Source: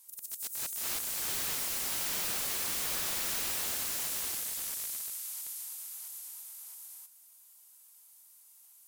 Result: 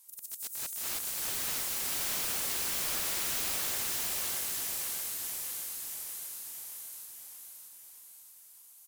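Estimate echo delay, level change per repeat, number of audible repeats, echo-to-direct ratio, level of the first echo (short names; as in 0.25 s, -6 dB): 0.628 s, -5.5 dB, 6, -2.5 dB, -4.0 dB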